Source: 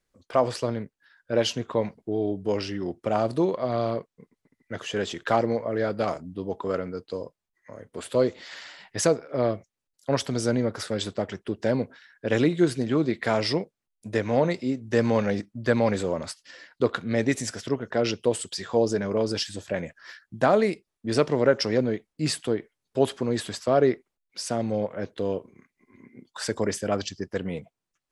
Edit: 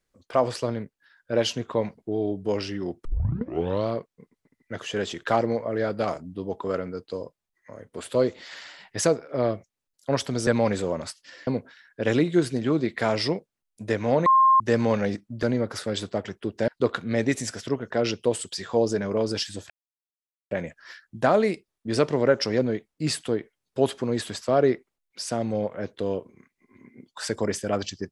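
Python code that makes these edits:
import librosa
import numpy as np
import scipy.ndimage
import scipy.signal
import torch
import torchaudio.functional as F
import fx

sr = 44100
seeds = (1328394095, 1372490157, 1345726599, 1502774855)

y = fx.edit(x, sr, fx.tape_start(start_s=3.05, length_s=0.83),
    fx.swap(start_s=10.47, length_s=1.25, other_s=15.68, other_length_s=1.0),
    fx.bleep(start_s=14.51, length_s=0.34, hz=1060.0, db=-13.5),
    fx.insert_silence(at_s=19.7, length_s=0.81), tone=tone)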